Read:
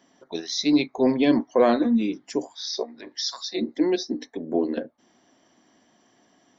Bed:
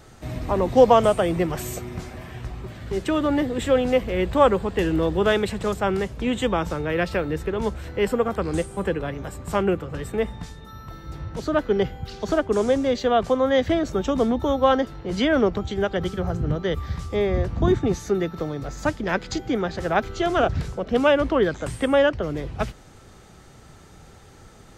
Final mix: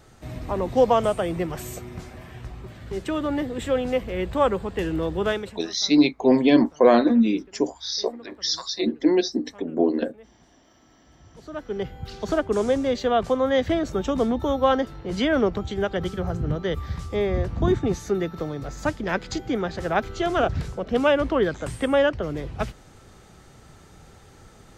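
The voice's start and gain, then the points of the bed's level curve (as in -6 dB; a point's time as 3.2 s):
5.25 s, +3.0 dB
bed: 5.3 s -4 dB
5.79 s -25.5 dB
10.94 s -25.5 dB
12.07 s -1.5 dB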